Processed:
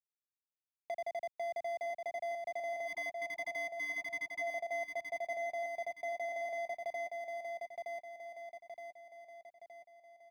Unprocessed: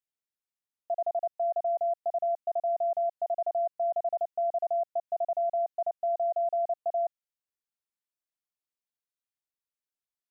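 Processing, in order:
running median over 41 samples
time-frequency box erased 0:02.87–0:04.42, 350–870 Hz
brickwall limiter −39.5 dBFS, peak gain reduction 10.5 dB
on a send: repeating echo 919 ms, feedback 37%, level −4.5 dB
on the sum: multiband upward and downward compressor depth 40%
level +4 dB

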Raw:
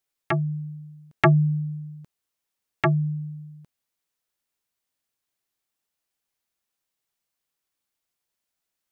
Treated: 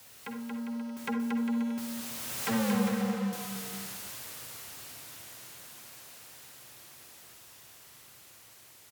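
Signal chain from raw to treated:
converter with a step at zero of −28.5 dBFS
source passing by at 0:02.66, 45 m/s, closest 5.5 metres
in parallel at +3 dB: downward compressor, threshold −51 dBFS, peak gain reduction 26 dB
on the sum: hard clipping −32 dBFS, distortion −4 dB
bouncing-ball delay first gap 230 ms, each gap 0.75×, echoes 5
on a send at −5 dB: convolution reverb RT60 0.55 s, pre-delay 42 ms
on the sum: frequency shifter +60 Hz
parametric band 120 Hz +7.5 dB 0.42 octaves
level +2.5 dB

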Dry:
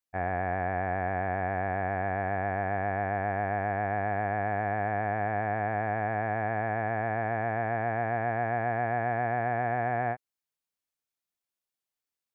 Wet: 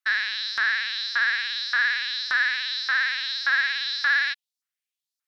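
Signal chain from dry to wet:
auto-filter high-pass saw up 0.74 Hz 570–2,200 Hz
wrong playback speed 33 rpm record played at 78 rpm
level +3 dB

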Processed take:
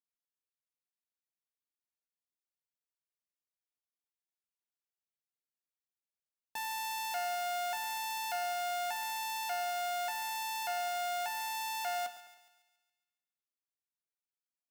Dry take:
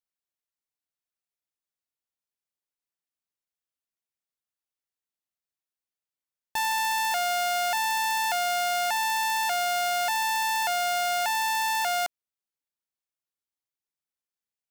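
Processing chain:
high-pass filter 110 Hz 24 dB per octave
tuned comb filter 240 Hz, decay 0.19 s, harmonics all, mix 70%
echo with a time of its own for lows and highs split 1,900 Hz, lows 104 ms, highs 139 ms, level −14 dB
level −3 dB

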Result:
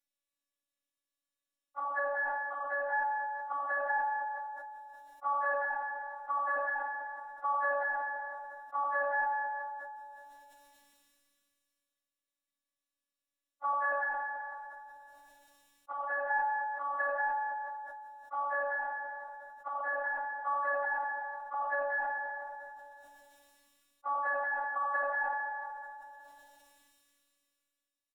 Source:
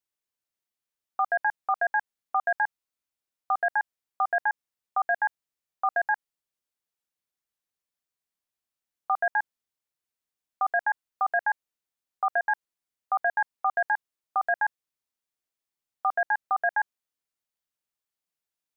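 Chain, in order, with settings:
treble cut that deepens with the level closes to 1,000 Hz, closed at −21.5 dBFS
time stretch by phase vocoder 1.5×
phases set to zero 284 Hz
repeating echo 372 ms, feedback 18%, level −16.5 dB
rectangular room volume 1,600 cubic metres, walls mixed, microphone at 1.9 metres
level that may fall only so fast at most 22 dB per second

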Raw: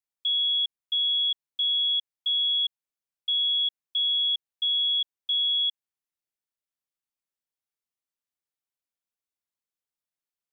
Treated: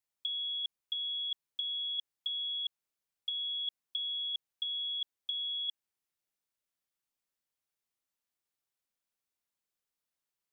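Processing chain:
compressor whose output falls as the input rises −29 dBFS, ratio −0.5
level −4.5 dB

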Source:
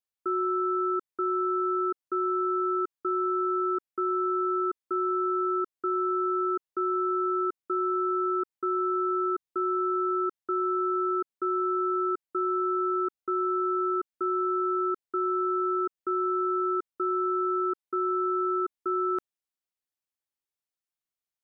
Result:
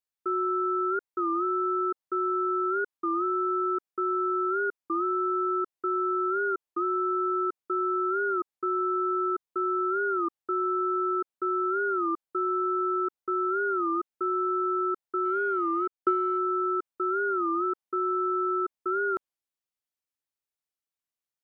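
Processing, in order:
dynamic equaliser 790 Hz, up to +5 dB, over −44 dBFS, Q 0.94
0:15.25–0:16.38: transient designer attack +8 dB, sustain −7 dB
wow of a warped record 33 1/3 rpm, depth 160 cents
level −2 dB

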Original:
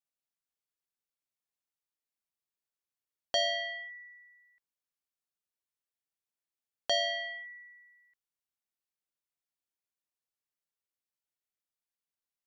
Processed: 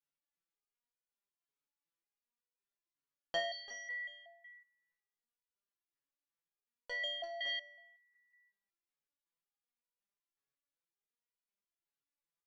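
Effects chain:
low-pass filter 2,500 Hz 6 dB per octave
parametric band 690 Hz −6.5 dB 0.24 octaves
multi-tap delay 339/559 ms −11.5/−17 dB
step-sequenced resonator 5.4 Hz 140–490 Hz
level +11.5 dB

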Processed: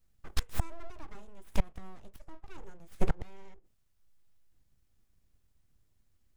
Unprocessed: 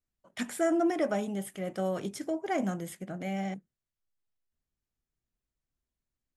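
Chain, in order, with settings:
gate with flip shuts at −29 dBFS, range −29 dB
full-wave rectification
low-shelf EQ 160 Hz +11.5 dB
level +10.5 dB

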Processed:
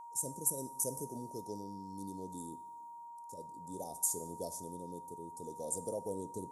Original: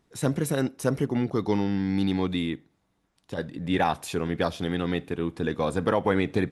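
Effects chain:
elliptic band-stop filter 590–6,800 Hz, stop band 60 dB
first-order pre-emphasis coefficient 0.97
coupled-rooms reverb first 0.64 s, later 2.7 s, from −18 dB, DRR 12.5 dB
rotating-speaker cabinet horn 0.65 Hz
steady tone 940 Hz −56 dBFS
level +9 dB

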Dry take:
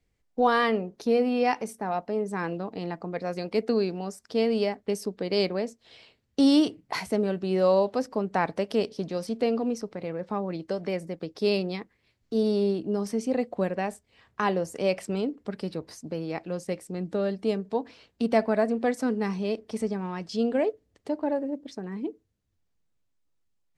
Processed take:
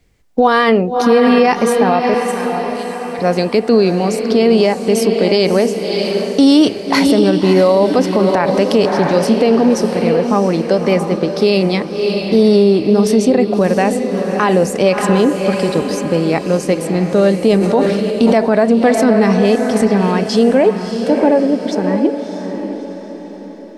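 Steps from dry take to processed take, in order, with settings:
0:02.14–0:03.19: first-order pre-emphasis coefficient 0.97
feedback delay with all-pass diffusion 635 ms, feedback 47%, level −8 dB
boost into a limiter +18.5 dB
0:17.42–0:18.32: level that may fall only so fast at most 27 dB per second
level −1.5 dB

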